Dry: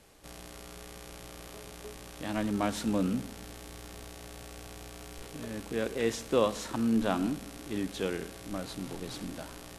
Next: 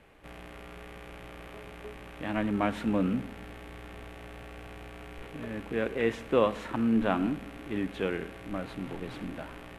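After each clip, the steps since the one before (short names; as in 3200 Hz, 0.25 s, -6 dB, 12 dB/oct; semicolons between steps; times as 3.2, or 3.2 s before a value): resonant high shelf 3600 Hz -13.5 dB, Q 1.5; gain +1.5 dB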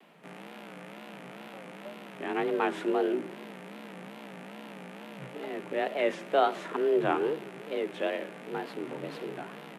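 frequency shift +140 Hz; wow and flutter 150 cents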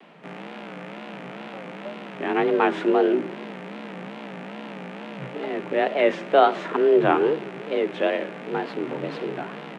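air absorption 100 m; gain +8.5 dB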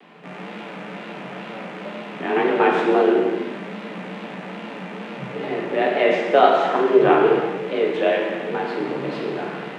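non-linear reverb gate 0.46 s falling, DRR -2 dB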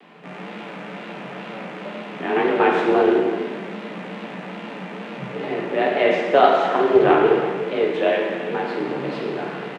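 echo 0.367 s -15 dB; Doppler distortion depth 0.12 ms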